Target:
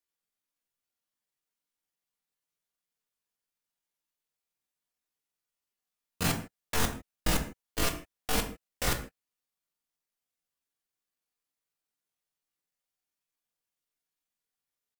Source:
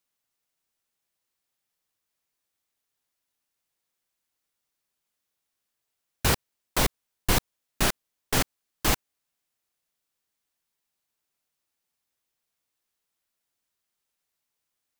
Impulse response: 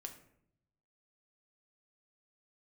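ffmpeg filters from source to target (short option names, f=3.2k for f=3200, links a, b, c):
-filter_complex "[0:a]asetrate=76340,aresample=44100,atempo=0.577676[a];[1:a]atrim=start_sample=2205,afade=t=out:st=0.21:d=0.01,atrim=end_sample=9702[b];[a][b]afir=irnorm=-1:irlink=0"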